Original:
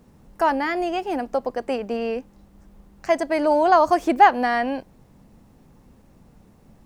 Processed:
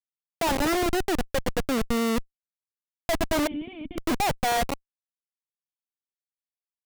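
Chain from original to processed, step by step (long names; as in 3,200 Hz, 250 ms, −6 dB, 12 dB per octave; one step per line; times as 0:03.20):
comparator with hysteresis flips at −23.5 dBFS
0:03.47–0:03.98: formant resonators in series i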